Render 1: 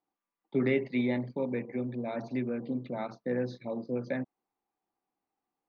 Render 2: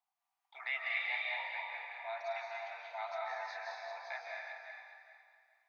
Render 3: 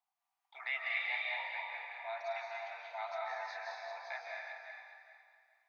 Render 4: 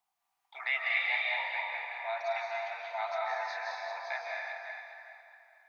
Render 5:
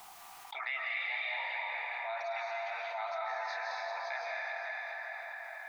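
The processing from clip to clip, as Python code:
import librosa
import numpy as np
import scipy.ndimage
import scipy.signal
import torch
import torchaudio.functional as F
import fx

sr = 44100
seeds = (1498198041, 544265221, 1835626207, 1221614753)

y1 = fx.reverse_delay_fb(x, sr, ms=206, feedback_pct=51, wet_db=-6.5)
y1 = scipy.signal.sosfilt(scipy.signal.cheby1(6, 3, 680.0, 'highpass', fs=sr, output='sos'), y1)
y1 = fx.rev_freeverb(y1, sr, rt60_s=1.6, hf_ratio=0.95, predelay_ms=120, drr_db=-2.5)
y2 = y1
y3 = fx.echo_wet_bandpass(y2, sr, ms=288, feedback_pct=55, hz=1000.0, wet_db=-13.0)
y3 = F.gain(torch.from_numpy(y3), 6.0).numpy()
y4 = fx.peak_eq(y3, sr, hz=1300.0, db=3.5, octaves=0.23)
y4 = fx.env_flatten(y4, sr, amount_pct=70)
y4 = F.gain(torch.from_numpy(y4), -8.0).numpy()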